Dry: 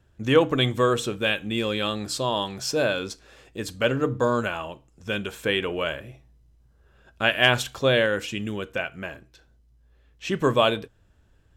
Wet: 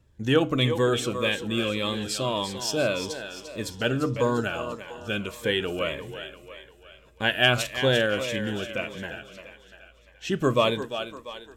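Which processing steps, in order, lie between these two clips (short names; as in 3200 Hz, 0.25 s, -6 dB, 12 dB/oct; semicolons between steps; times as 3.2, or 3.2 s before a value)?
on a send: thinning echo 0.346 s, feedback 51%, high-pass 290 Hz, level -9 dB; on the sum: cascading phaser falling 1.7 Hz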